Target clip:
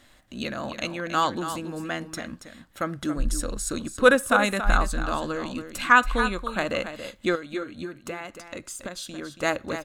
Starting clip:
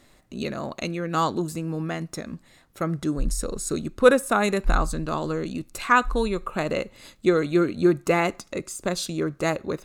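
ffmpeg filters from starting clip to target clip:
-filter_complex "[0:a]equalizer=f=160:t=o:w=0.33:g=-10,equalizer=f=400:t=o:w=0.33:g=-10,equalizer=f=1.6k:t=o:w=0.33:g=6,equalizer=f=3.15k:t=o:w=0.33:g=7,asettb=1/sr,asplit=3[a][b][c];[a]atrim=end=7.354[d];[b]atrim=start=7.35:end=9.43,asetpts=PTS-STARTPTS,afade=t=in:d=0.004:c=qsin,afade=t=out:st=2.076:d=0.004:c=qsin,acompressor=threshold=-33dB:ratio=6[e];[c]atrim=start=9.426[f];[d][e]acrossfade=d=0.004:c1=hsin:c2=qsin[g];[g][f]acrossfade=d=0.004:c1=qsin:c2=hsin,aecho=1:1:279:0.316"

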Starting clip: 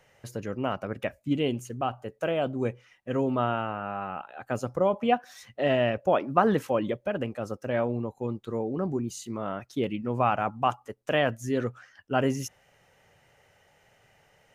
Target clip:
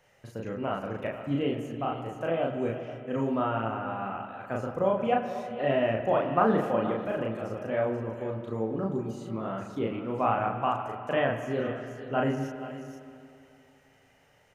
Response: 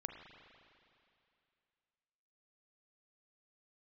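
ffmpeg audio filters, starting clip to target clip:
-filter_complex "[0:a]aecho=1:1:478:0.188,acrossover=split=2900[a][b];[b]acompressor=threshold=-55dB:ratio=4:attack=1:release=60[c];[a][c]amix=inputs=2:normalize=0,asplit=2[d][e];[1:a]atrim=start_sample=2205,adelay=36[f];[e][f]afir=irnorm=-1:irlink=0,volume=2.5dB[g];[d][g]amix=inputs=2:normalize=0,volume=-4dB"

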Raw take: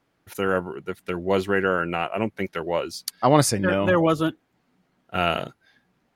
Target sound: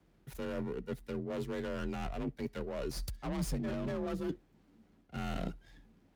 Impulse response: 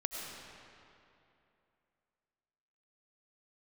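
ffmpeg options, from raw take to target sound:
-filter_complex "[0:a]acrossover=split=540[a][b];[b]aeval=exprs='max(val(0),0)':c=same[c];[a][c]amix=inputs=2:normalize=0,aeval=exprs='(tanh(11.2*val(0)+0.15)-tanh(0.15))/11.2':c=same,areverse,acompressor=threshold=-37dB:ratio=12,areverse,lowshelf=f=150:g=10.5,afreqshift=39[d];[1:a]atrim=start_sample=2205,atrim=end_sample=3087[e];[d][e]afir=irnorm=-1:irlink=0,volume=1dB"

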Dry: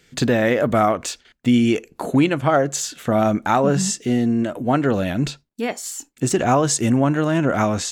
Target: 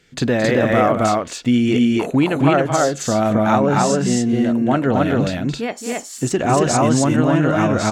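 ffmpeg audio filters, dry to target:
-filter_complex "[0:a]highshelf=f=9k:g=-9,asplit=2[a][b];[b]aecho=0:1:221.6|268.2:0.355|0.891[c];[a][c]amix=inputs=2:normalize=0"

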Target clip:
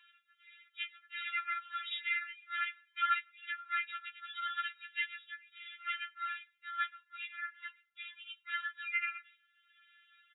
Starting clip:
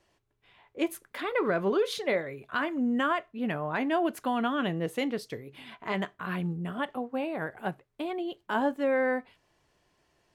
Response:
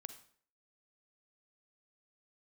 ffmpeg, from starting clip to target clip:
-filter_complex "[0:a]asplit=2[a][b];[1:a]atrim=start_sample=2205,highshelf=f=3.3k:g=-6.5[c];[b][c]afir=irnorm=-1:irlink=0,volume=-6.5dB[d];[a][d]amix=inputs=2:normalize=0,asplit=3[e][f][g];[f]asetrate=35002,aresample=44100,atempo=1.25992,volume=-9dB[h];[g]asetrate=58866,aresample=44100,atempo=0.749154,volume=-8dB[i];[e][h][i]amix=inputs=3:normalize=0,afftfilt=real='re*between(b*sr/4096,1100,4000)':imag='im*between(b*sr/4096,1100,4000)':win_size=4096:overlap=0.75,acompressor=mode=upward:threshold=-52dB:ratio=2.5,afftfilt=real='re*4*eq(mod(b,16),0)':imag='im*4*eq(mod(b,16),0)':win_size=2048:overlap=0.75"

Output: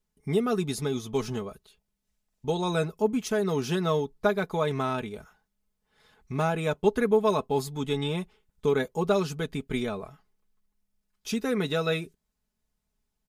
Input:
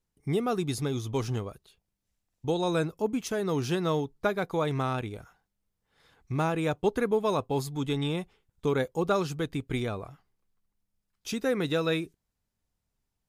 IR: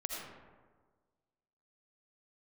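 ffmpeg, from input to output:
-af "aecho=1:1:4.7:0.62"

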